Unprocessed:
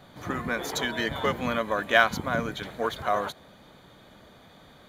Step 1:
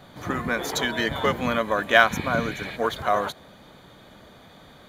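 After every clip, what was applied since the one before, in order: spectral replace 2.13–2.73 s, 1.6–5.4 kHz before; trim +3.5 dB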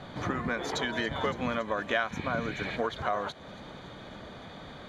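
compression 3:1, threshold -35 dBFS, peak gain reduction 18 dB; distance through air 89 m; feedback echo behind a high-pass 281 ms, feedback 77%, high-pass 4.9 kHz, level -14 dB; trim +4.5 dB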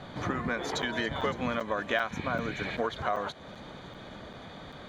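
crackling interface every 0.39 s, samples 256, zero, from 0.82 s

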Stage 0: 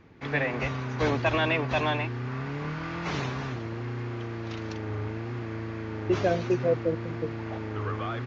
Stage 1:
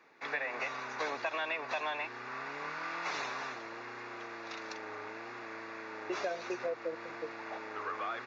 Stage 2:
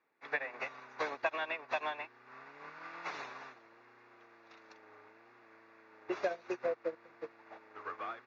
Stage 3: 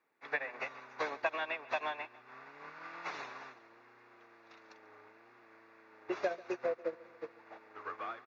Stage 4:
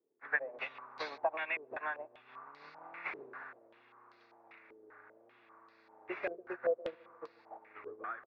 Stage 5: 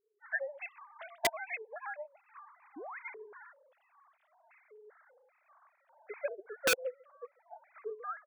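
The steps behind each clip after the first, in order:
high-pass 670 Hz 12 dB/octave; band-stop 3.1 kHz, Q 5.6; compression 6:1, threshold -32 dBFS, peak gain reduction 9.5 dB
treble shelf 5.2 kHz -10 dB; upward expansion 2.5:1, over -45 dBFS; trim +4.5 dB
feedback delay 141 ms, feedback 53%, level -21 dB
step-sequenced low-pass 5.1 Hz 410–4500 Hz; trim -5.5 dB
formants replaced by sine waves; integer overflow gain 24.5 dB; painted sound rise, 2.76–2.99 s, 260–2200 Hz -47 dBFS; trim +3 dB

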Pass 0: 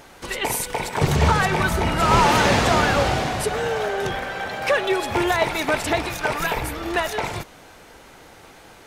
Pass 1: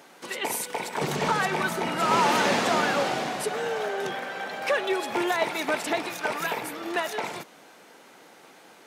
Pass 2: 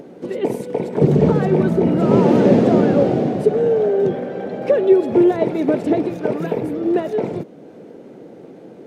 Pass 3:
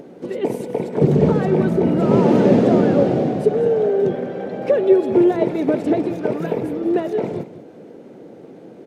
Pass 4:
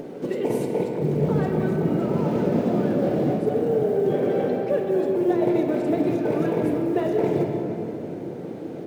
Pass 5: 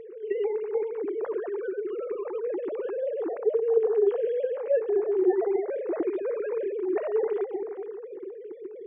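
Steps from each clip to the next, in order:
high-pass 180 Hz 24 dB/octave; trim -5 dB
tilt EQ -3.5 dB/octave; upward compressor, threshold -42 dBFS; resonant low shelf 690 Hz +11.5 dB, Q 1.5; trim -3 dB
delay 194 ms -13.5 dB; trim -1 dB
reverse; compression 16:1, threshold -24 dBFS, peak gain reduction 17 dB; reverse; companded quantiser 8-bit; simulated room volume 220 m³, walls hard, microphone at 0.4 m; trim +3 dB
formants replaced by sine waves; trim -5 dB

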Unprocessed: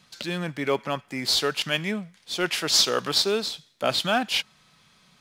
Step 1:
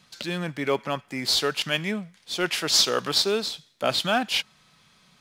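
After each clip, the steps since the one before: no audible change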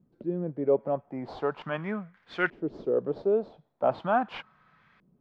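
LFO low-pass saw up 0.4 Hz 320–1900 Hz; trim -4 dB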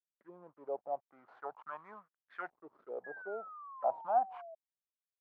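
hysteresis with a dead band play -42.5 dBFS; auto-wah 760–1900 Hz, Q 5.9, down, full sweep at -24.5 dBFS; painted sound fall, 3.04–4.55 s, 640–1700 Hz -48 dBFS; trim -1 dB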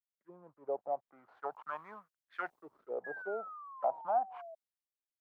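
compression 3:1, threshold -40 dBFS, peak gain reduction 11.5 dB; three bands expanded up and down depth 70%; trim +5.5 dB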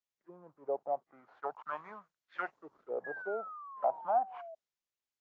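trim +1.5 dB; AAC 32 kbps 16 kHz

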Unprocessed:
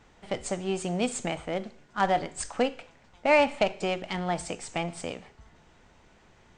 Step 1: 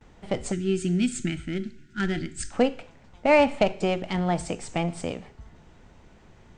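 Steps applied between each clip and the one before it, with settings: gate with hold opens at -50 dBFS; time-frequency box 0.52–2.53 s, 400–1300 Hz -22 dB; bass shelf 440 Hz +8.5 dB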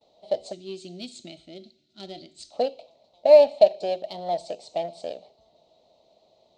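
two resonant band-passes 1.6 kHz, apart 2.7 oct; in parallel at -11 dB: crossover distortion -41 dBFS; on the sum: trim +7.5 dB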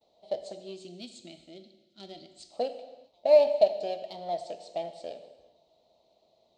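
gated-style reverb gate 430 ms falling, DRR 9 dB; trim -6 dB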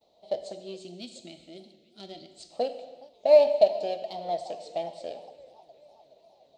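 modulated delay 416 ms, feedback 67%, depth 211 cents, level -23.5 dB; trim +2 dB

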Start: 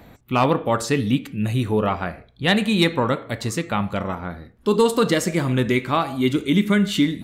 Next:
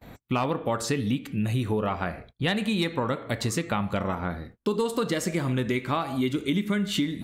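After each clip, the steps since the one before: gate -47 dBFS, range -32 dB; compression 5:1, threshold -25 dBFS, peak gain reduction 11.5 dB; trim +1.5 dB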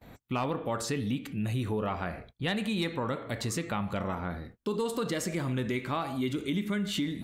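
transient shaper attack -2 dB, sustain +3 dB; trim -4.5 dB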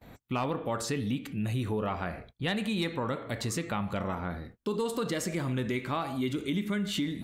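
no audible change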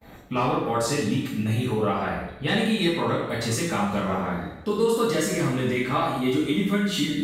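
two-slope reverb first 0.67 s, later 1.7 s, from -16 dB, DRR -9 dB; trim -1.5 dB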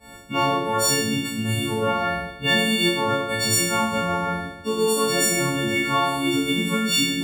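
partials quantised in pitch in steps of 4 st; decimation joined by straight lines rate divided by 2×

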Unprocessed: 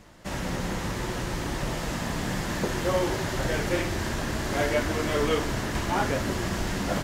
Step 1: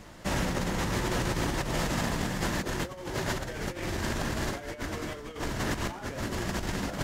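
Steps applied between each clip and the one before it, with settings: compressor with a negative ratio -31 dBFS, ratio -0.5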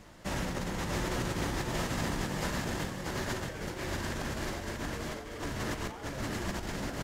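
feedback delay 635 ms, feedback 32%, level -3.5 dB; trim -5 dB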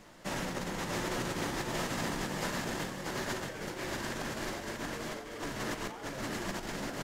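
peaking EQ 61 Hz -14.5 dB 1.5 oct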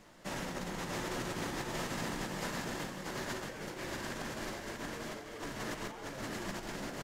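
echo from a far wall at 29 m, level -11 dB; trim -3.5 dB

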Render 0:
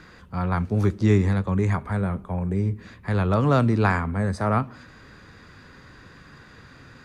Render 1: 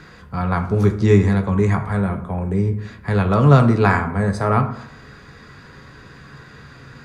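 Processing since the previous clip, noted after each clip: reverberation RT60 0.75 s, pre-delay 3 ms, DRR 5 dB; trim +4 dB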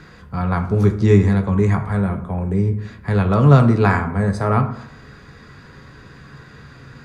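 bass shelf 370 Hz +3 dB; trim -1.5 dB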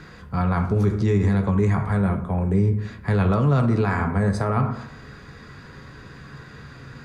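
peak limiter -12.5 dBFS, peak gain reduction 10.5 dB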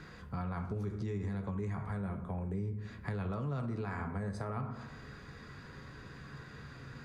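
compression 3:1, threshold -30 dBFS, peak gain reduction 10.5 dB; trim -7.5 dB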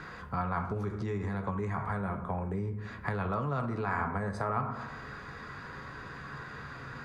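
peaking EQ 1.1 kHz +10 dB 2.1 oct; trim +1.5 dB

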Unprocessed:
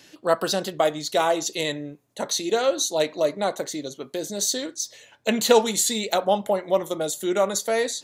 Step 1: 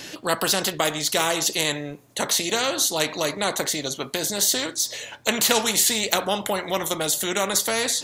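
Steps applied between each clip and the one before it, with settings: spectrum-flattening compressor 2:1; trim +1.5 dB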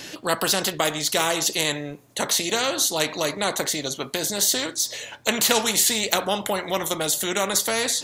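no audible change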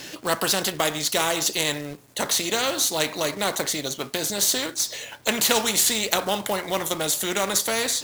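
companded quantiser 4-bit; trim -1 dB

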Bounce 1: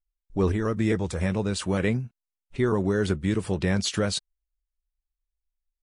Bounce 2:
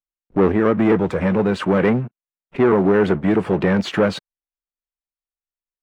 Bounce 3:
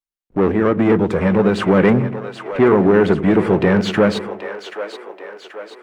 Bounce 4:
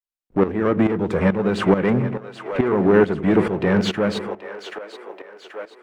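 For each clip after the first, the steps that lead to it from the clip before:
treble shelf 6 kHz -10 dB; waveshaping leveller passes 3; three-band isolator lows -19 dB, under 150 Hz, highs -19 dB, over 2.6 kHz; trim +3 dB
level rider gain up to 16 dB; on a send: two-band feedback delay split 420 Hz, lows 92 ms, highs 781 ms, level -10 dB; on the sum: trim -1.5 dB
tremolo saw up 2.3 Hz, depth 75%

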